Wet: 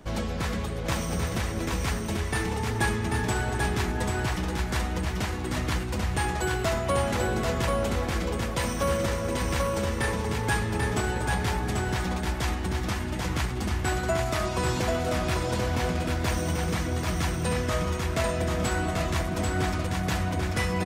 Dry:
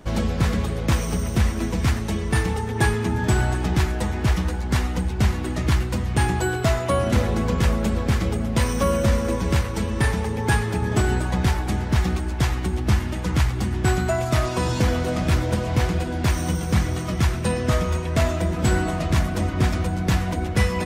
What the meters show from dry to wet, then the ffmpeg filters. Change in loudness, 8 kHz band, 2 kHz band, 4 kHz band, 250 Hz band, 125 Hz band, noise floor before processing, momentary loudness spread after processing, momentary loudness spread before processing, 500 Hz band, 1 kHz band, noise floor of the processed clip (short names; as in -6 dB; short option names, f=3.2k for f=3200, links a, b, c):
-5.0 dB, -2.0 dB, -2.0 dB, -2.0 dB, -6.0 dB, -7.5 dB, -27 dBFS, 3 LU, 3 LU, -3.0 dB, -2.0 dB, -31 dBFS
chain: -filter_complex "[0:a]acrossover=split=420[a][b];[a]alimiter=limit=-21.5dB:level=0:latency=1[c];[c][b]amix=inputs=2:normalize=0,aecho=1:1:789:0.668,volume=-3.5dB"